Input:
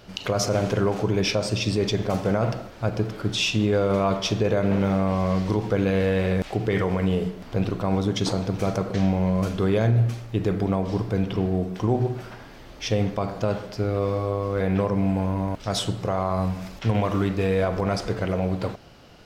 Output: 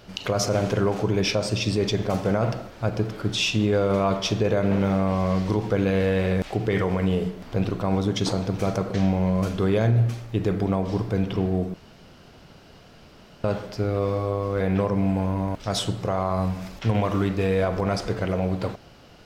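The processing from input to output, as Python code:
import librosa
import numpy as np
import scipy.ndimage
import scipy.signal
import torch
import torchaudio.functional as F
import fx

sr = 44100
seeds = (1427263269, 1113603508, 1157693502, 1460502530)

y = fx.edit(x, sr, fx.room_tone_fill(start_s=11.74, length_s=1.7), tone=tone)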